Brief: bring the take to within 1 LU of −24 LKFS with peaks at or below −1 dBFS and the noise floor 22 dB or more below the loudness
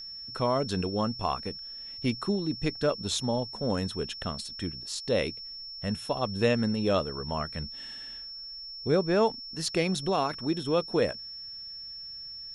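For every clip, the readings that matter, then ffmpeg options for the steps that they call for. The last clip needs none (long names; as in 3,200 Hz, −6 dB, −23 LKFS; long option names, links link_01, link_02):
interfering tone 5,400 Hz; level of the tone −39 dBFS; integrated loudness −30.5 LKFS; sample peak −11.5 dBFS; target loudness −24.0 LKFS
→ -af "bandreject=frequency=5400:width=30"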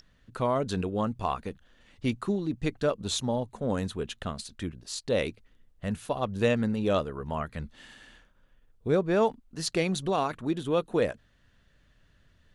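interfering tone none found; integrated loudness −30.0 LKFS; sample peak −11.5 dBFS; target loudness −24.0 LKFS
→ -af "volume=6dB"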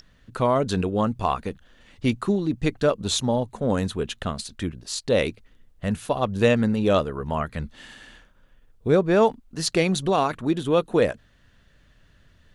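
integrated loudness −24.0 LKFS; sample peak −5.5 dBFS; background noise floor −58 dBFS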